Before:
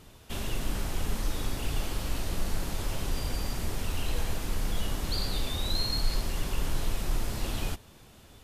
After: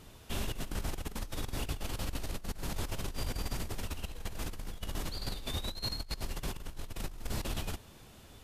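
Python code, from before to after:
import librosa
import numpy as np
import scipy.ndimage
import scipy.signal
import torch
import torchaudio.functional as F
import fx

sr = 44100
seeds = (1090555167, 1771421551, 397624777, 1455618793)

y = fx.over_compress(x, sr, threshold_db=-31.0, ratio=-0.5)
y = F.gain(torch.from_numpy(y), -4.5).numpy()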